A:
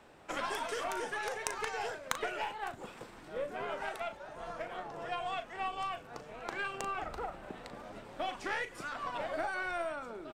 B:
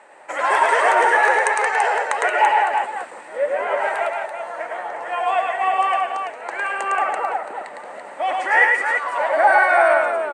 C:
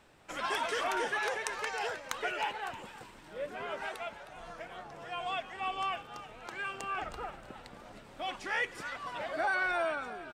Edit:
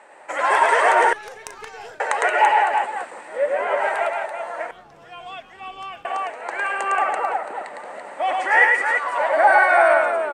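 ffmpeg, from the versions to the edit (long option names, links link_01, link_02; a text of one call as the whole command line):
ffmpeg -i take0.wav -i take1.wav -i take2.wav -filter_complex "[1:a]asplit=3[link_01][link_02][link_03];[link_01]atrim=end=1.132[link_04];[0:a]atrim=start=1.128:end=2.002[link_05];[link_02]atrim=start=1.998:end=4.712[link_06];[2:a]atrim=start=4.708:end=6.052[link_07];[link_03]atrim=start=6.048[link_08];[link_04][link_05]acrossfade=duration=0.004:curve1=hsin:curve2=hsin[link_09];[link_09][link_06]acrossfade=duration=0.004:curve1=hsin:curve2=hsin[link_10];[link_10][link_07]acrossfade=duration=0.004:curve1=hsin:curve2=hsin[link_11];[link_11][link_08]acrossfade=duration=0.004:curve1=hsin:curve2=hsin" out.wav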